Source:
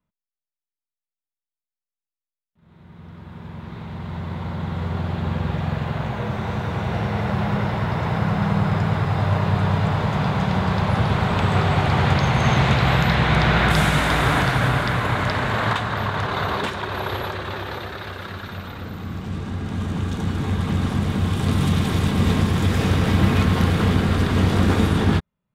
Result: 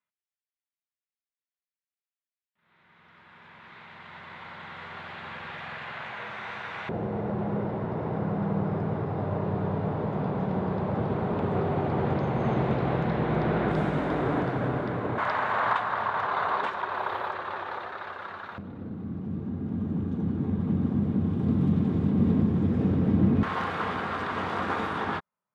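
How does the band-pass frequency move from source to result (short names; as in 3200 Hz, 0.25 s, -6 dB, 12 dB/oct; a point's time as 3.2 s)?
band-pass, Q 1.3
2000 Hz
from 6.89 s 360 Hz
from 15.18 s 1000 Hz
from 18.58 s 240 Hz
from 23.43 s 1100 Hz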